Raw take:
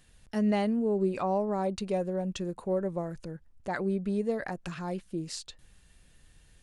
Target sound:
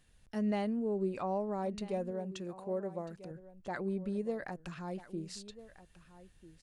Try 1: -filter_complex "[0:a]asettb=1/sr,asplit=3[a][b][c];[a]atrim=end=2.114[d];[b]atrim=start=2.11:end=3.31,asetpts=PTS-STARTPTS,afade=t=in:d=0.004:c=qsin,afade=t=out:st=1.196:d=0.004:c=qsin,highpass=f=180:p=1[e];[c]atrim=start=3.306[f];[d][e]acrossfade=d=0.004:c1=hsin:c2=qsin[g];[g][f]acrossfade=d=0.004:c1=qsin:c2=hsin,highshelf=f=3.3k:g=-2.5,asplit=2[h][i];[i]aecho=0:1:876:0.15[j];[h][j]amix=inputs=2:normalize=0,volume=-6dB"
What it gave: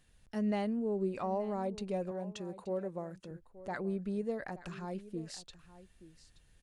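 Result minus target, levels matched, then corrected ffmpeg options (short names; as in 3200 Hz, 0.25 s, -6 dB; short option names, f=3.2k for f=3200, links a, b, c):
echo 0.417 s early
-filter_complex "[0:a]asettb=1/sr,asplit=3[a][b][c];[a]atrim=end=2.114[d];[b]atrim=start=2.11:end=3.31,asetpts=PTS-STARTPTS,afade=t=in:d=0.004:c=qsin,afade=t=out:st=1.196:d=0.004:c=qsin,highpass=f=180:p=1[e];[c]atrim=start=3.306[f];[d][e]acrossfade=d=0.004:c1=hsin:c2=qsin[g];[g][f]acrossfade=d=0.004:c1=qsin:c2=hsin,highshelf=f=3.3k:g=-2.5,asplit=2[h][i];[i]aecho=0:1:1293:0.15[j];[h][j]amix=inputs=2:normalize=0,volume=-6dB"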